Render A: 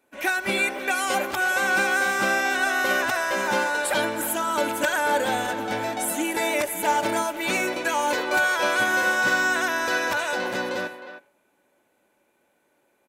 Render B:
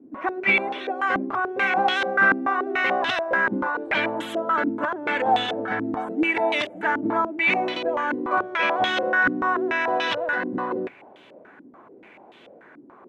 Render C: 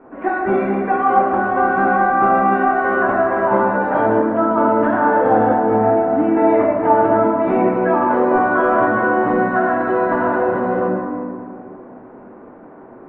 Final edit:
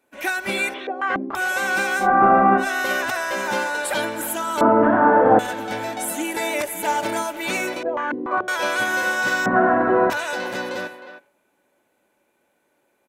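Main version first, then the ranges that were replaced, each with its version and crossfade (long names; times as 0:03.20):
A
0:00.74–0:01.35: punch in from B
0:02.03–0:02.62: punch in from C, crossfade 0.10 s
0:04.61–0:05.39: punch in from C
0:07.83–0:08.48: punch in from B
0:09.46–0:10.10: punch in from C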